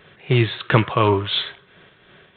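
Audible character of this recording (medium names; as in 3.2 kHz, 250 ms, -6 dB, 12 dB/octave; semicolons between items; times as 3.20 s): tremolo triangle 2.9 Hz, depth 55%; G.726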